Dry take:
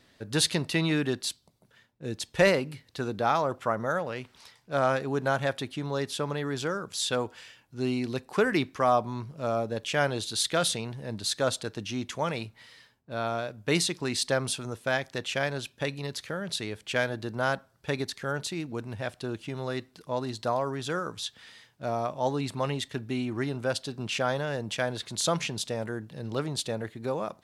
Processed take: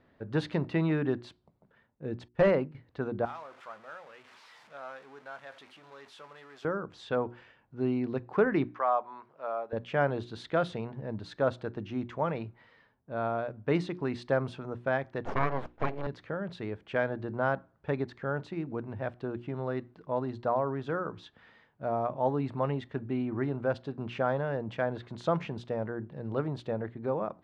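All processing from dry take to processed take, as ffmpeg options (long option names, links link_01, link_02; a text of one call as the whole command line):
ffmpeg -i in.wav -filter_complex "[0:a]asettb=1/sr,asplit=3[link_01][link_02][link_03];[link_01]atrim=end=2.284[link_04];[link_02]atrim=start=2.28:end=2.75,asetpts=PTS-STARTPTS,afade=type=in:duration=0.004:curve=qsin,afade=type=out:start_time=0.466:duration=0.004:curve=qsin,agate=range=-33dB:threshold=-33dB:ratio=3:release=100:detection=peak,aeval=exprs='0.188*(abs(mod(val(0)/0.188+3,4)-2)-1)':channel_layout=same[link_05];[link_03]atrim=start=2.746[link_06];[link_04][link_05]acrossfade=duration=0.004:curve1=hsin:curve2=qsin[link_07];[link_07][link_06]acrossfade=duration=0.004:curve1=qsin:curve2=hsin,asettb=1/sr,asplit=3[link_08][link_09][link_10];[link_08]atrim=end=3.254[link_11];[link_09]atrim=start=3.25:end=6.65,asetpts=PTS-STARTPTS,afade=type=in:duration=0.004:curve=qsin,afade=type=out:start_time=3.396:duration=0.004:curve=qsin,aeval=exprs='val(0)+0.5*0.0355*sgn(val(0))':channel_layout=same,aderivative,asplit=2[link_12][link_13];[link_13]adelay=19,volume=-12dB[link_14];[link_12][link_14]amix=inputs=2:normalize=0,atrim=end_sample=149940[link_15];[link_10]atrim=start=6.646[link_16];[link_11][link_15]acrossfade=duration=0.004:curve1=hsin:curve2=qsin[link_17];[link_17][link_16]acrossfade=duration=0.004:curve1=qsin:curve2=hsin,asettb=1/sr,asplit=3[link_18][link_19][link_20];[link_18]atrim=end=8.744[link_21];[link_19]atrim=start=8.74:end=9.73,asetpts=PTS-STARTPTS,afade=type=in:duration=0.004:curve=qsin,afade=type=out:start_time=0.986:duration=0.004:curve=qsin,highpass=760,equalizer=frequency=12000:width=0.75:gain=-11.5[link_22];[link_20]atrim=start=9.726[link_23];[link_21][link_22]acrossfade=duration=0.004:curve1=hsin:curve2=qsin[link_24];[link_24][link_23]acrossfade=duration=0.004:curve1=qsin:curve2=hsin,asettb=1/sr,asplit=3[link_25][link_26][link_27];[link_25]atrim=end=15.254[link_28];[link_26]atrim=start=15.25:end=16.07,asetpts=PTS-STARTPTS,afade=type=in:duration=0.004:curve=qsin,afade=type=out:start_time=0.816:duration=0.004:curve=qsin,aeval=exprs='abs(val(0))':channel_layout=same,equalizer=frequency=700:width=0.41:gain=8.5[link_29];[link_27]atrim=start=16.066[link_30];[link_28][link_29]acrossfade=duration=0.004:curve1=hsin:curve2=qsin[link_31];[link_31][link_30]acrossfade=duration=0.004:curve1=qsin:curve2=hsin,lowpass=1400,bandreject=frequency=60:width_type=h:width=6,bandreject=frequency=120:width_type=h:width=6,bandreject=frequency=180:width_type=h:width=6,bandreject=frequency=240:width_type=h:width=6,bandreject=frequency=300:width_type=h:width=6,bandreject=frequency=360:width_type=h:width=6" out.wav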